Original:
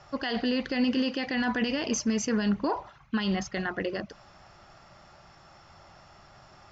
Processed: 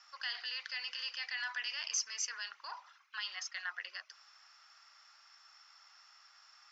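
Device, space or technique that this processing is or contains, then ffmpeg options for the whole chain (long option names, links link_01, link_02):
headphones lying on a table: -af "highpass=frequency=1200:width=0.5412,highpass=frequency=1200:width=1.3066,equalizer=frequency=5300:width_type=o:width=0.38:gain=8,volume=-5.5dB"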